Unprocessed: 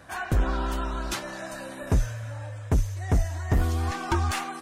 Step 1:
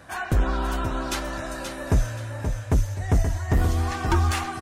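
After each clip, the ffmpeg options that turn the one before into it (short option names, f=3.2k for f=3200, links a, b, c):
-af "aecho=1:1:528|1056|1584:0.447|0.125|0.035,volume=2dB"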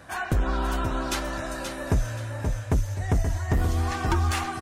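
-af "acompressor=threshold=-19dB:ratio=6"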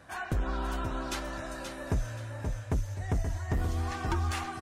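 -af "highshelf=f=11k:g=-4.5,volume=-6.5dB"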